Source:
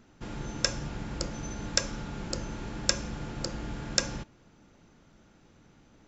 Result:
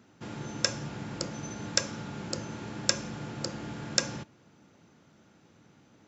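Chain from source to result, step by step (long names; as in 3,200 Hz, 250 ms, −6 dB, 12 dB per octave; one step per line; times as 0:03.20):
high-pass filter 92 Hz 24 dB per octave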